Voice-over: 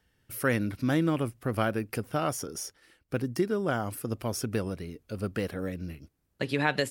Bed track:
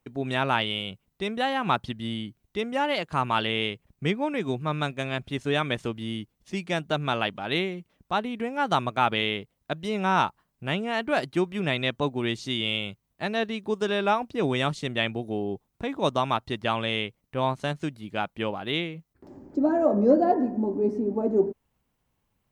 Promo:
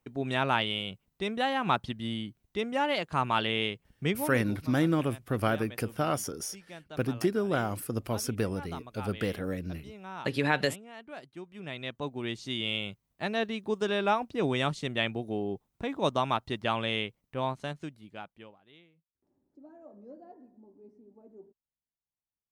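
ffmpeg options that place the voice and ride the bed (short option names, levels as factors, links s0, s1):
-filter_complex "[0:a]adelay=3850,volume=1[s0];[1:a]volume=4.73,afade=t=out:st=4.05:d=0.5:silence=0.149624,afade=t=in:st=11.43:d=1.49:silence=0.158489,afade=t=out:st=17.02:d=1.56:silence=0.0473151[s1];[s0][s1]amix=inputs=2:normalize=0"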